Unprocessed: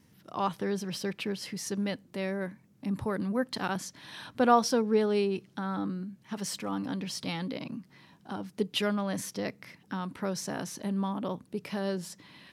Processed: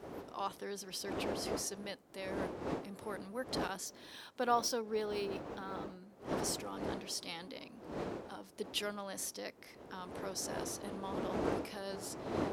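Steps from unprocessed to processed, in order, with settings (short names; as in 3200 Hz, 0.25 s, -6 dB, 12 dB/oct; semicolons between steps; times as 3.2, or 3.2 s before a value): wind noise 340 Hz -29 dBFS; HPF 50 Hz; tone controls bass -14 dB, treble +8 dB; 3.86–6.1 decimation joined by straight lines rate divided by 2×; gain -8.5 dB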